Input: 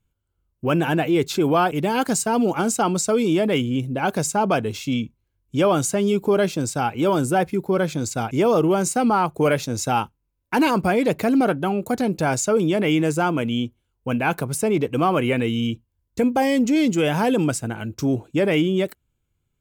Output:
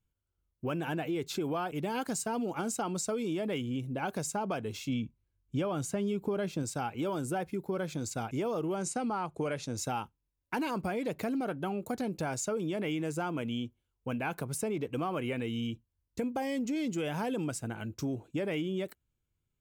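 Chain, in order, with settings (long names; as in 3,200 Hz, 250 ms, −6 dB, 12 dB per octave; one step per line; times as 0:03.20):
downward compressor, threshold −21 dBFS, peak gain reduction 7.5 dB
0:04.89–0:06.63: bass and treble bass +4 dB, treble −4 dB
0:08.76–0:09.77: low-pass filter 10,000 Hz 24 dB per octave
level −9 dB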